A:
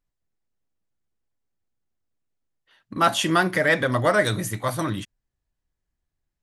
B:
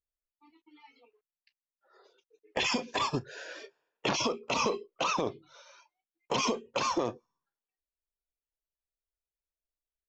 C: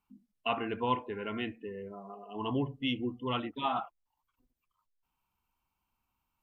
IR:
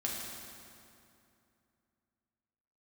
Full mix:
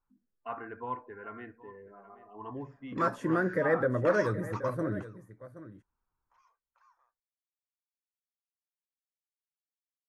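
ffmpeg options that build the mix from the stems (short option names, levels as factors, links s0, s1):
-filter_complex "[0:a]lowshelf=f=640:t=q:w=3:g=7.5,volume=0.178,asplit=3[s0][s1][s2];[s1]volume=0.178[s3];[1:a]highpass=f=930:w=0.5412,highpass=f=930:w=1.3066,volume=0.562[s4];[2:a]equalizer=f=190:w=2.2:g=-6.5,volume=0.398,asplit=2[s5][s6];[s6]volume=0.126[s7];[s2]apad=whole_len=444749[s8];[s4][s8]sidechaingate=range=0.0282:threshold=0.0178:ratio=16:detection=peak[s9];[s3][s7]amix=inputs=2:normalize=0,aecho=0:1:775:1[s10];[s0][s9][s5][s10]amix=inputs=4:normalize=0,highshelf=f=2200:t=q:w=3:g=-11"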